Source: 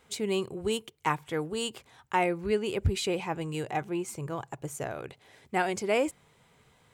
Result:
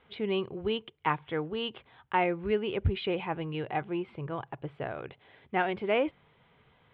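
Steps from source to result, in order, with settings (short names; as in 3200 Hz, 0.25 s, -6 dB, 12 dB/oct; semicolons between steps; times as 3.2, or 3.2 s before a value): elliptic low-pass 3400 Hz, stop band 50 dB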